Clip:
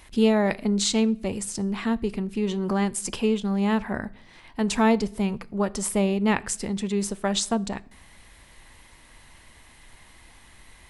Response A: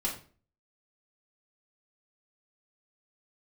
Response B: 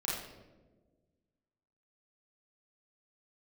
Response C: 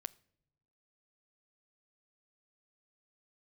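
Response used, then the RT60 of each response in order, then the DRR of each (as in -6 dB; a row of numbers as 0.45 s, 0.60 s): C; 0.40 s, 1.3 s, no single decay rate; -4.0 dB, -7.0 dB, 16.5 dB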